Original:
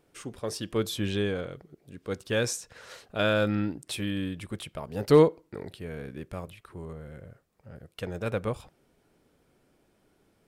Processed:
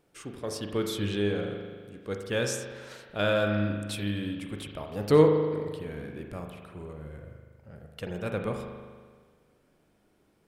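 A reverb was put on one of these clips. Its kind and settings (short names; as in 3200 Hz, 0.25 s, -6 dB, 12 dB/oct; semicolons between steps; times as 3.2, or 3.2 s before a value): spring tank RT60 1.6 s, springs 39 ms, chirp 50 ms, DRR 3.5 dB; gain -2 dB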